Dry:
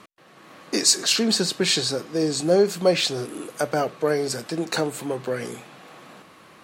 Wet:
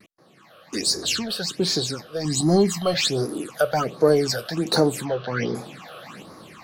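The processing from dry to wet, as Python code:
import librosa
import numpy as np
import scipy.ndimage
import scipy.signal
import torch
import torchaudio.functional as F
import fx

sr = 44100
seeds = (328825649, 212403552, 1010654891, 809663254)

p1 = fx.comb(x, sr, ms=1.0, depth=0.92, at=(2.25, 2.94))
p2 = fx.brickwall_lowpass(p1, sr, high_hz=6300.0, at=(5.04, 5.54), fade=0.02)
p3 = fx.vibrato(p2, sr, rate_hz=0.34, depth_cents=15.0)
p4 = np.clip(p3, -10.0 ** (-21.0 / 20.0), 10.0 ** (-21.0 / 20.0))
p5 = p3 + (p4 * 10.0 ** (-7.5 / 20.0))
p6 = fx.rider(p5, sr, range_db=10, speed_s=2.0)
p7 = fx.dmg_noise_band(p6, sr, seeds[0], low_hz=64.0, high_hz=560.0, level_db=-43.0, at=(0.74, 1.25), fade=0.02)
y = fx.phaser_stages(p7, sr, stages=8, low_hz=260.0, high_hz=2800.0, hz=1.3, feedback_pct=35)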